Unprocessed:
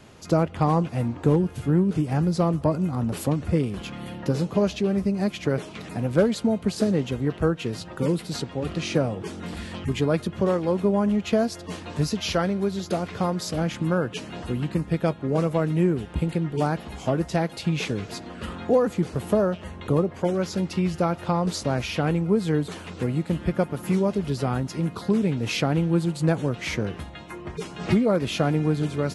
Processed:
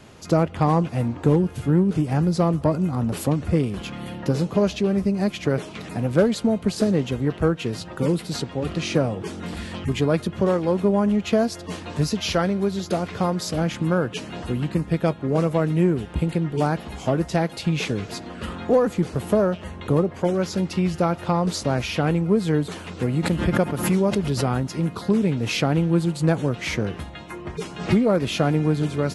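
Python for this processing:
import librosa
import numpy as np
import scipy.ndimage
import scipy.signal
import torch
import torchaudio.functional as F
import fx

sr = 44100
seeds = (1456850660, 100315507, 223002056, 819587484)

p1 = fx.clip_asym(x, sr, top_db=-25.0, bottom_db=-12.5)
p2 = x + (p1 * librosa.db_to_amplitude(-10.0))
y = fx.pre_swell(p2, sr, db_per_s=82.0, at=(23.03, 24.6))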